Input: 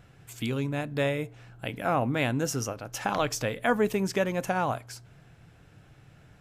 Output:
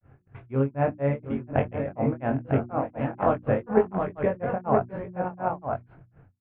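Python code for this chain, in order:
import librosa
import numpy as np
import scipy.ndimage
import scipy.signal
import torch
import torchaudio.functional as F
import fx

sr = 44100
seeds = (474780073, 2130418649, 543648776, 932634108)

p1 = fx.rider(x, sr, range_db=4, speed_s=2.0)
p2 = x + (p1 * librosa.db_to_amplitude(1.5))
p3 = scipy.ndimage.gaussian_filter1d(p2, 5.1, mode='constant')
p4 = fx.level_steps(p3, sr, step_db=15)
p5 = fx.echo_multitap(p4, sr, ms=(50, 687, 741, 888), db=(-14.5, -20.0, -9.0, -5.5))
p6 = fx.dynamic_eq(p5, sr, hz=700.0, q=0.85, threshold_db=-39.0, ratio=4.0, max_db=4)
p7 = fx.granulator(p6, sr, seeds[0], grain_ms=210.0, per_s=4.1, spray_ms=100.0, spread_st=0)
p8 = fx.peak_eq(p7, sr, hz=93.0, db=9.0, octaves=0.28)
p9 = fx.hum_notches(p8, sr, base_hz=60, count=6)
p10 = fx.doubler(p9, sr, ms=22.0, db=-4.5)
y = p10 * librosa.db_to_amplitude(6.0)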